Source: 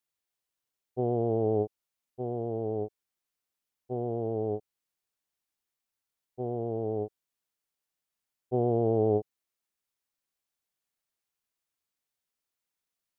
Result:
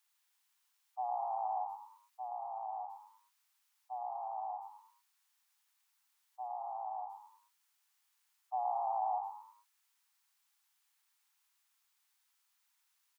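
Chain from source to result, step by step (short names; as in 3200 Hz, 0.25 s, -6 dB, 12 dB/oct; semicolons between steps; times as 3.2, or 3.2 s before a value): steep high-pass 780 Hz 72 dB/oct; spectral gate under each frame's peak -30 dB strong; frequency-shifting echo 0.106 s, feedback 38%, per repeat +54 Hz, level -6.5 dB; gain +9 dB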